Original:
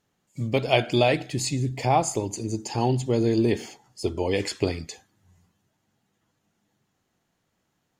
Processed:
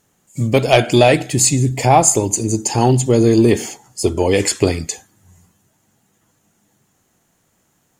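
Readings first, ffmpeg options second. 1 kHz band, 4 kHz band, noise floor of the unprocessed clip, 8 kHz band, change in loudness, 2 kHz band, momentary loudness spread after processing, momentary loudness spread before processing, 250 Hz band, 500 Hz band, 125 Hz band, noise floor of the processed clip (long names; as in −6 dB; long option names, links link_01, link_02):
+9.5 dB, +8.0 dB, −75 dBFS, +17.5 dB, +10.5 dB, +8.5 dB, 12 LU, 12 LU, +10.0 dB, +9.5 dB, +10.0 dB, −63 dBFS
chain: -af "highshelf=frequency=5900:width_type=q:width=1.5:gain=7,aeval=exprs='0.562*sin(PI/2*1.41*val(0)/0.562)':channel_layout=same,volume=3.5dB"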